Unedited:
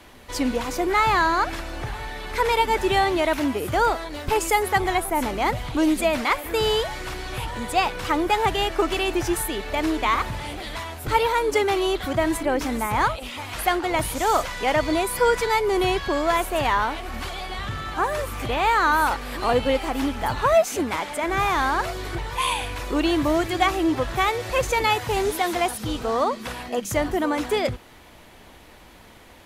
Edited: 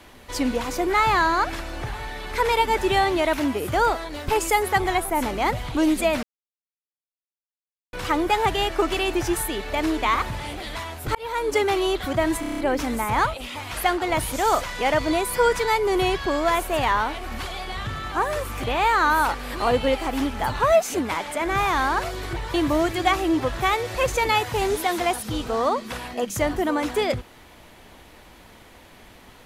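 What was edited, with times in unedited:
6.23–7.93 mute
11.15–11.67 fade in equal-power
12.4 stutter 0.03 s, 7 plays
22.36–23.09 cut

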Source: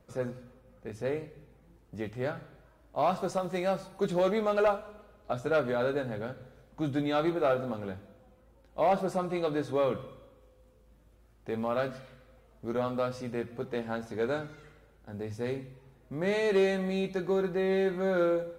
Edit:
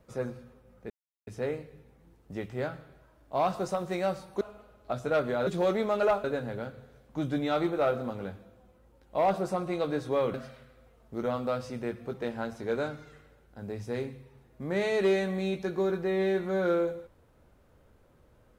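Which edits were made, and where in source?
0.9 insert silence 0.37 s
4.04–4.81 move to 5.87
9.97–11.85 cut

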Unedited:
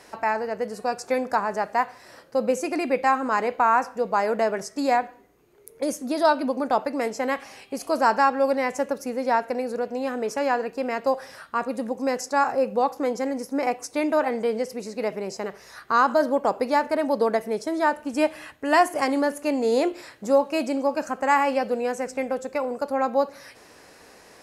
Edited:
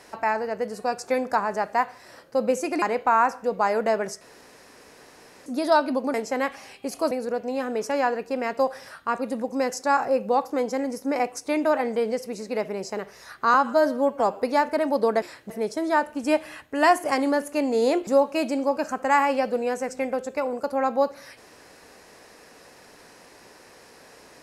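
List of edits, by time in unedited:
2.82–3.35 cut
4.74–5.99 room tone
6.67–7.02 cut
7.99–9.58 cut
16.01–16.59 stretch 1.5×
19.97–20.25 move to 17.4

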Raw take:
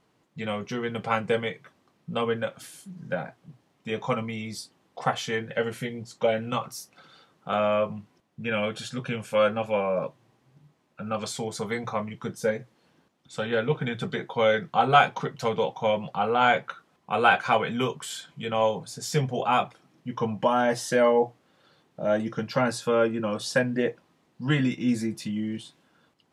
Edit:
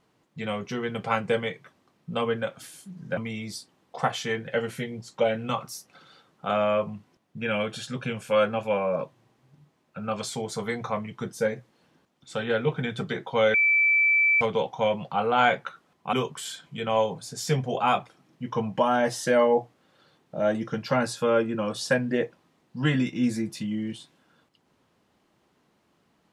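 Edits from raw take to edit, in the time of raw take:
3.17–4.2 cut
14.57–15.44 bleep 2320 Hz -17.5 dBFS
17.16–17.78 cut

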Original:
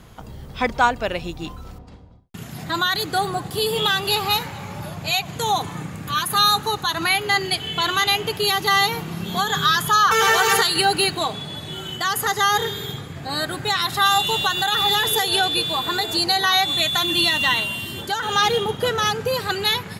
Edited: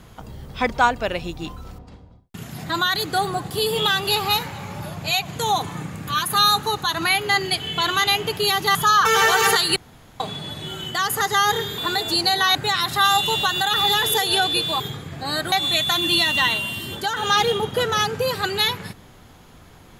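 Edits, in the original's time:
8.75–9.81 cut
10.82–11.26 room tone
12.84–13.56 swap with 15.81–16.58

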